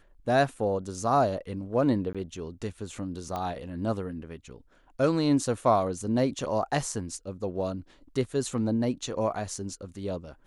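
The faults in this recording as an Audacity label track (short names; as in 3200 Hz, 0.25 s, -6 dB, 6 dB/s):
2.130000	2.150000	gap 16 ms
3.360000	3.360000	pop -20 dBFS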